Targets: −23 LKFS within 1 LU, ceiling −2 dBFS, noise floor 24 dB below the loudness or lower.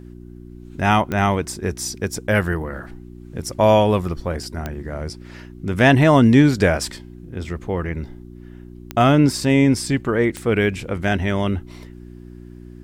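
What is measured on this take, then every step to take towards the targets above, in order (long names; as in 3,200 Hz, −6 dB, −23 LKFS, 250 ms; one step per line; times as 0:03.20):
number of clicks 4; mains hum 60 Hz; hum harmonics up to 360 Hz; level of the hum −39 dBFS; integrated loudness −19.0 LKFS; sample peak −2.0 dBFS; target loudness −23.0 LKFS
→ click removal
hum removal 60 Hz, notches 6
level −4 dB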